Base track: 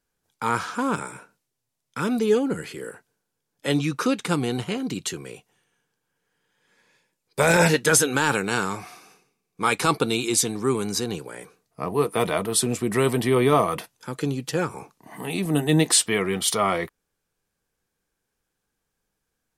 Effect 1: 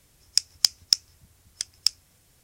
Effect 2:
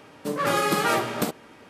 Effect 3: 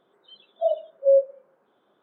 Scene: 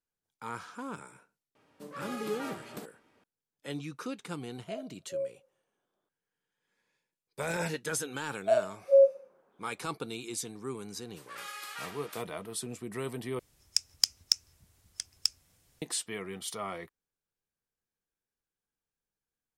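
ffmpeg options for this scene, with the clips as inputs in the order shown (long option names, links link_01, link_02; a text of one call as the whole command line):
ffmpeg -i bed.wav -i cue0.wav -i cue1.wav -i cue2.wav -filter_complex "[2:a]asplit=2[link_01][link_02];[3:a]asplit=2[link_03][link_04];[0:a]volume=-15.5dB[link_05];[link_02]highpass=1500[link_06];[link_05]asplit=2[link_07][link_08];[link_07]atrim=end=13.394[link_09];[1:a]atrim=end=2.43,asetpts=PTS-STARTPTS,volume=-6.5dB[link_10];[link_08]atrim=start=15.816[link_11];[link_01]atrim=end=1.69,asetpts=PTS-STARTPTS,volume=-18dB,afade=type=in:duration=0.004:curve=hsin,afade=type=out:start_time=1.686:duration=0.004:curve=hsin,adelay=1550[link_12];[link_03]atrim=end=2.02,asetpts=PTS-STARTPTS,volume=-17.5dB,afade=type=in:duration=0.004:curve=hsin,afade=type=out:start_time=2.016:duration=0.004:curve=hsin,adelay=4070[link_13];[link_04]atrim=end=2.02,asetpts=PTS-STARTPTS,volume=-2.5dB,afade=type=in:duration=0.004:curve=hsin,afade=type=out:start_time=2.016:duration=0.004:curve=hsin,adelay=346626S[link_14];[link_06]atrim=end=1.69,asetpts=PTS-STARTPTS,volume=-14dB,afade=type=in:duration=0.004:curve=hsin,afade=type=out:start_time=1.686:duration=0.004:curve=hsin,adelay=10910[link_15];[link_09][link_10]acrossfade=duration=0.004:curve1=hsin:curve2=hsin[link_16];[link_16][link_11]acrossfade=duration=0.004:curve1=hsin:curve2=hsin[link_17];[link_17][link_12][link_13][link_14][link_15]amix=inputs=5:normalize=0" out.wav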